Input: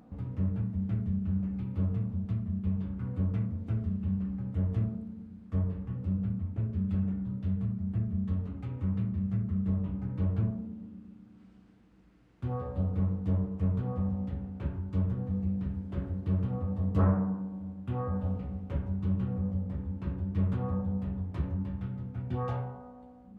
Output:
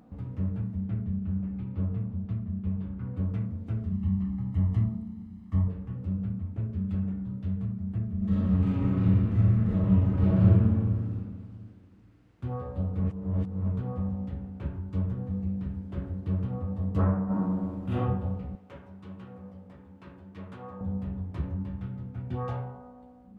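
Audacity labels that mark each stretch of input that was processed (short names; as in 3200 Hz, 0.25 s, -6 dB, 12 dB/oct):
0.810000	3.170000	air absorption 130 m
3.920000	5.680000	comb 1 ms, depth 73%
8.170000	11.140000	reverb throw, RT60 2 s, DRR -10.5 dB
13.040000	13.670000	reverse
17.250000	17.970000	reverb throw, RT60 0.84 s, DRR -11 dB
18.550000	20.810000	HPF 750 Hz 6 dB/oct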